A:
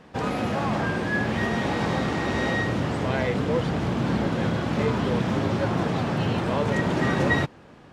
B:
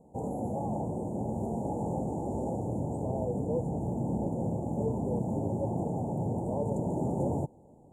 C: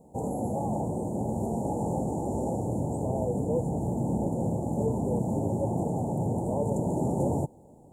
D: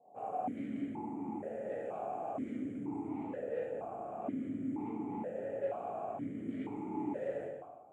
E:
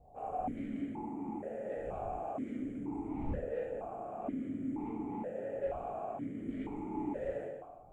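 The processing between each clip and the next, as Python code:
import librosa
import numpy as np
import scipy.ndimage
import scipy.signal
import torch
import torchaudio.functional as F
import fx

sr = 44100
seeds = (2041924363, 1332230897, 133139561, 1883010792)

y1 = scipy.signal.sosfilt(scipy.signal.cheby1(5, 1.0, [880.0, 7100.0], 'bandstop', fs=sr, output='sos'), x)
y1 = F.gain(torch.from_numpy(y1), -6.0).numpy()
y2 = fx.high_shelf(y1, sr, hz=4200.0, db=8.0)
y2 = F.gain(torch.from_numpy(y2), 3.0).numpy()
y3 = 10.0 ** (-31.0 / 20.0) * np.tanh(y2 / 10.0 ** (-31.0 / 20.0))
y3 = fx.rev_plate(y3, sr, seeds[0], rt60_s=1.1, hf_ratio=0.85, predelay_ms=0, drr_db=-7.5)
y3 = fx.vowel_held(y3, sr, hz=2.1)
y3 = F.gain(torch.from_numpy(y3), -1.5).numpy()
y4 = fx.dmg_wind(y3, sr, seeds[1], corner_hz=90.0, level_db=-51.0)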